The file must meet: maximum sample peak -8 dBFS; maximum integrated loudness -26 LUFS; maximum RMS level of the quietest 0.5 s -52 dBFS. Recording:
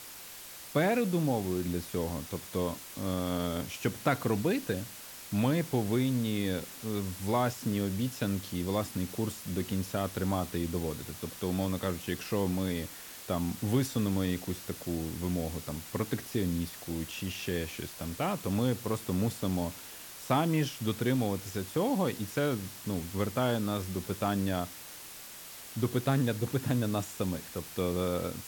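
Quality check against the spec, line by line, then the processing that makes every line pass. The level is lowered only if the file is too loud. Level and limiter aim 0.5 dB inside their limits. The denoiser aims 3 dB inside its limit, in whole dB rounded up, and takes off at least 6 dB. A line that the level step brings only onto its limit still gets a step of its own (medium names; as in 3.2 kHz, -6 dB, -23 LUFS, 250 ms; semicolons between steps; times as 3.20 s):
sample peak -14.5 dBFS: pass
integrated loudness -32.5 LUFS: pass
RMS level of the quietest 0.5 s -47 dBFS: fail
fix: noise reduction 8 dB, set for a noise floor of -47 dBFS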